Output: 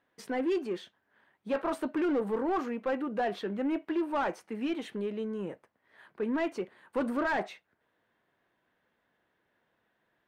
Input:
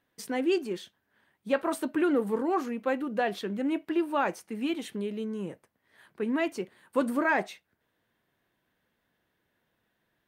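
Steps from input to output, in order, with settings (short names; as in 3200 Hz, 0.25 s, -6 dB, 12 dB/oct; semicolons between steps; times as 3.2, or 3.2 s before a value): hard clip -22.5 dBFS, distortion -15 dB; overdrive pedal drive 11 dB, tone 1200 Hz, clips at -22.5 dBFS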